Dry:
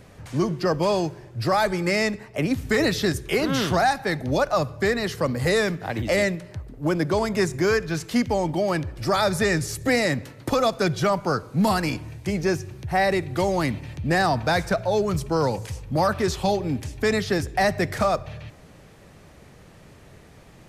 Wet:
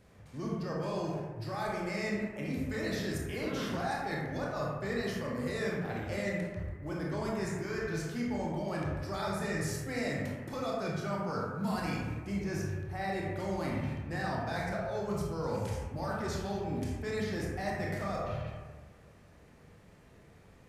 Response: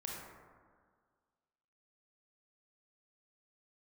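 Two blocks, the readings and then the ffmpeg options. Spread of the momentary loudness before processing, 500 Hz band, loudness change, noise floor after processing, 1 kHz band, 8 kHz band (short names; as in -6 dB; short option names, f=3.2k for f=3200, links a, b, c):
7 LU, -12.5 dB, -12.0 dB, -57 dBFS, -13.0 dB, -13.0 dB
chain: -filter_complex "[0:a]agate=range=-7dB:threshold=-37dB:ratio=16:detection=peak,areverse,acompressor=threshold=-30dB:ratio=6,areverse[a];[1:a]atrim=start_sample=2205,asetrate=57330,aresample=44100[b];[a][b]afir=irnorm=-1:irlink=0"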